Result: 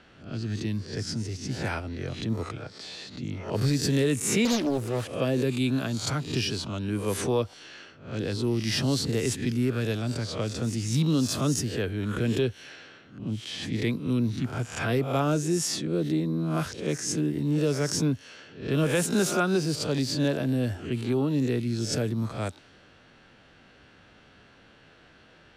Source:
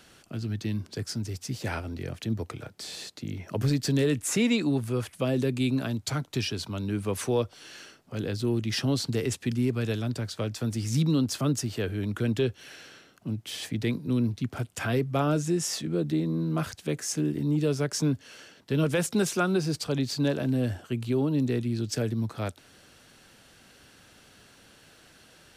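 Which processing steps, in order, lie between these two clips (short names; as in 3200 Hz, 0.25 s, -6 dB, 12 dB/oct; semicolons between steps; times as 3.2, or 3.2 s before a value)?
spectral swells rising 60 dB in 0.46 s; low-pass opened by the level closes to 2800 Hz, open at -23 dBFS; 4.45–5.12 Doppler distortion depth 0.66 ms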